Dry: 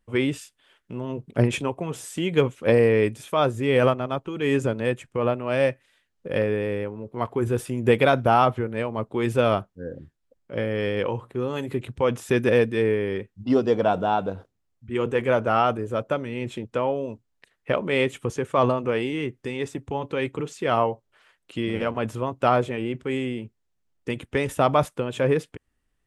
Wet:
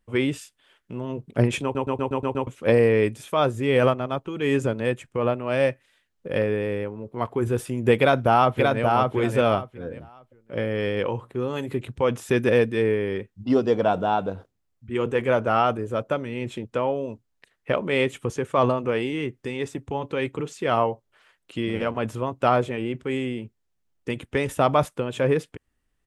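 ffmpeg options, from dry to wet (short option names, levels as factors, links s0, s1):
-filter_complex "[0:a]asplit=2[s0][s1];[s1]afade=t=in:st=7.98:d=0.01,afade=t=out:st=8.83:d=0.01,aecho=0:1:580|1160|1740:0.707946|0.141589|0.0283178[s2];[s0][s2]amix=inputs=2:normalize=0,asplit=8[s3][s4][s5][s6][s7][s8][s9][s10];[s3]atrim=end=1.752[s11];[s4]atrim=start=1.628:end=1.752[s12];[s5]atrim=start=1.628:end=1.752[s13];[s6]atrim=start=1.628:end=1.752[s14];[s7]atrim=start=1.628:end=1.752[s15];[s8]atrim=start=1.628:end=1.752[s16];[s9]atrim=start=1.628:end=1.752[s17];[s10]atrim=start=2.468[s18];[s11][s12]acrossfade=d=0.004:c1=hsin:c2=hsin[s19];[s19][s13]acrossfade=d=0.004:c1=hsin:c2=hsin[s20];[s20][s14]acrossfade=d=0.004:c1=hsin:c2=hsin[s21];[s21][s15]acrossfade=d=0.004:c1=hsin:c2=hsin[s22];[s22][s16]acrossfade=d=0.004:c1=hsin:c2=hsin[s23];[s23][s17]acrossfade=d=0.004:c1=hsin:c2=hsin[s24];[s24][s18]acrossfade=d=0.004:c1=hsin:c2=hsin"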